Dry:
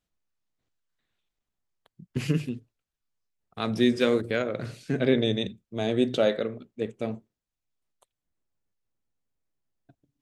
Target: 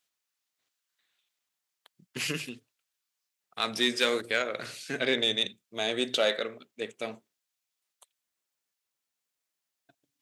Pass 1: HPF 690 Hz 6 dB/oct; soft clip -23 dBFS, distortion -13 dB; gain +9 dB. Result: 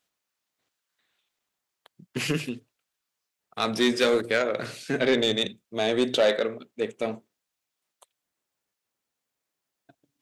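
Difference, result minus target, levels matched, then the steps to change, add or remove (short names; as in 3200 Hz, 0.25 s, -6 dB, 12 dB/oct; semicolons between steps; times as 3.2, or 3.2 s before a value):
500 Hz band +3.5 dB
change: HPF 2200 Hz 6 dB/oct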